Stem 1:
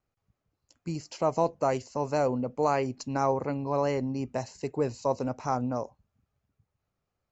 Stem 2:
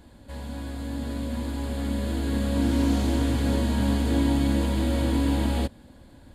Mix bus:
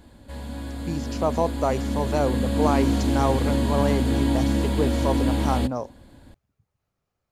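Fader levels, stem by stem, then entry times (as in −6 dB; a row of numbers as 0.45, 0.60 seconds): +2.5, +1.0 decibels; 0.00, 0.00 seconds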